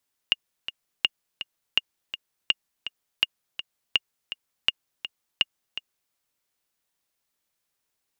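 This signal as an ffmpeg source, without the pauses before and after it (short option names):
-f lavfi -i "aevalsrc='pow(10,(-6-12*gte(mod(t,2*60/165),60/165))/20)*sin(2*PI*2840*mod(t,60/165))*exp(-6.91*mod(t,60/165)/0.03)':d=5.81:s=44100"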